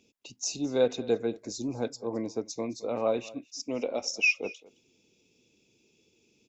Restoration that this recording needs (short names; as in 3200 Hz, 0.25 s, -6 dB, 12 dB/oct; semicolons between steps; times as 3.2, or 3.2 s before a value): inverse comb 0.216 s -21 dB